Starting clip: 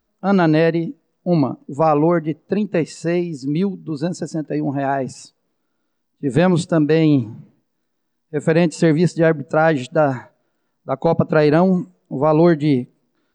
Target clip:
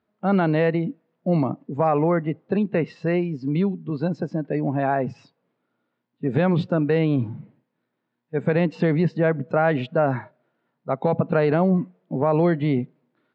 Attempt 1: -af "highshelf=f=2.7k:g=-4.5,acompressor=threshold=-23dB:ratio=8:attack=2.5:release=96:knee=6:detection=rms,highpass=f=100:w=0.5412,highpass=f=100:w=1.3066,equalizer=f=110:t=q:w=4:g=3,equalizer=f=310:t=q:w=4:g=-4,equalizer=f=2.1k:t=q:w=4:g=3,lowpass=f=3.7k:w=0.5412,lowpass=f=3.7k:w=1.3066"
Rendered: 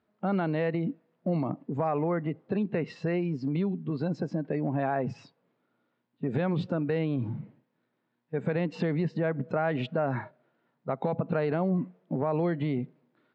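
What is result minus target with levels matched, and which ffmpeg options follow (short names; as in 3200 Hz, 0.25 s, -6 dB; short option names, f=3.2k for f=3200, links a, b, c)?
compressor: peak gain reduction +8.5 dB
-af "highshelf=f=2.7k:g=-4.5,acompressor=threshold=-13dB:ratio=8:attack=2.5:release=96:knee=6:detection=rms,highpass=f=100:w=0.5412,highpass=f=100:w=1.3066,equalizer=f=110:t=q:w=4:g=3,equalizer=f=310:t=q:w=4:g=-4,equalizer=f=2.1k:t=q:w=4:g=3,lowpass=f=3.7k:w=0.5412,lowpass=f=3.7k:w=1.3066"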